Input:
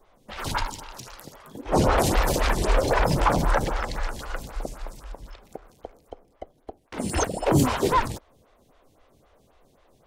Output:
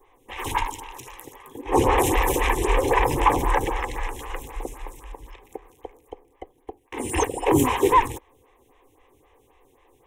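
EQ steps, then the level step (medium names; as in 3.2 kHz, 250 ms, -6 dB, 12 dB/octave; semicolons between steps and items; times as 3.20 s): bass shelf 99 Hz -7 dB; static phaser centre 940 Hz, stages 8; +5.5 dB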